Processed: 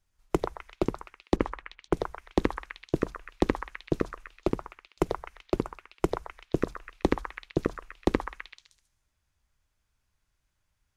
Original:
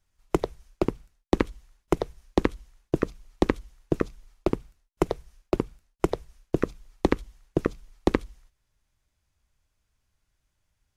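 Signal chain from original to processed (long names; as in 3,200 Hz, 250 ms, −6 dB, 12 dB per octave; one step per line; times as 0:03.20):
0:01.36–0:02.00: low-pass that shuts in the quiet parts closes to 700 Hz, open at −21 dBFS
echo through a band-pass that steps 128 ms, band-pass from 1,200 Hz, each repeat 0.7 octaves, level −0.5 dB
level −2.5 dB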